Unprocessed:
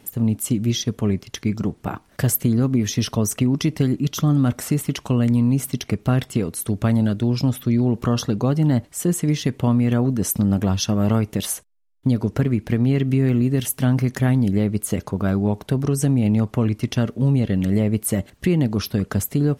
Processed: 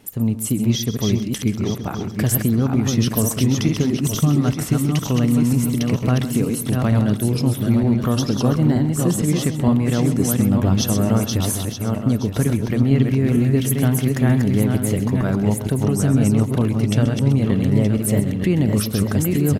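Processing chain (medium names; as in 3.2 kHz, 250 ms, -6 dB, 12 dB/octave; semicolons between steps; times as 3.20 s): backward echo that repeats 461 ms, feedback 48%, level -3.5 dB; on a send: delay 131 ms -13 dB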